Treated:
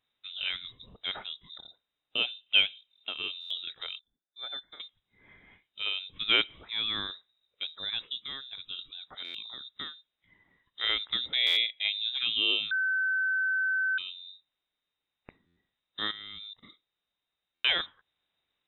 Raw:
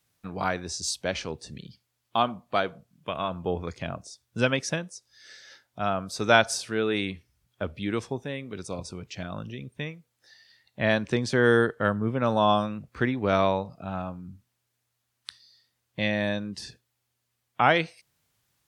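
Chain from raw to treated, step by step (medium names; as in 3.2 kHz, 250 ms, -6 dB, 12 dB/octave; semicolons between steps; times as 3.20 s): 2.46–3.09 s: high-order bell 900 Hz +9 dB; 3.99–4.80 s: vowel filter i; 16.11–16.63 s: level held to a coarse grid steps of 19 dB; frequency inversion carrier 3.8 kHz; 12.71–13.98 s: bleep 1.53 kHz -19 dBFS; buffer glitch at 3.40/9.24/11.46/15.46/17.54 s, samples 512, times 8; trim -6 dB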